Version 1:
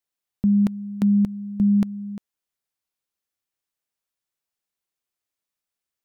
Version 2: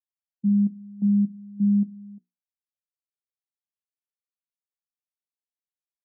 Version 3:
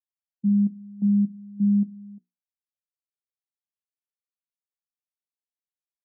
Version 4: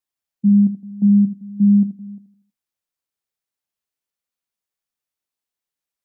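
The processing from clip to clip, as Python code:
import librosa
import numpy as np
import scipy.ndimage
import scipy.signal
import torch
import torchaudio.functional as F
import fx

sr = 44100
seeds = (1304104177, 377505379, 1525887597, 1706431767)

y1 = scipy.signal.sosfilt(scipy.signal.ellip(3, 1.0, 40, [170.0, 780.0], 'bandpass', fs=sr, output='sos'), x)
y1 = fx.hum_notches(y1, sr, base_hz=60, count=7)
y1 = fx.spectral_expand(y1, sr, expansion=1.5)
y1 = y1 * 10.0 ** (-1.5 / 20.0)
y2 = y1
y3 = fx.echo_feedback(y2, sr, ms=80, feedback_pct=44, wet_db=-12)
y3 = y3 * 10.0 ** (7.5 / 20.0)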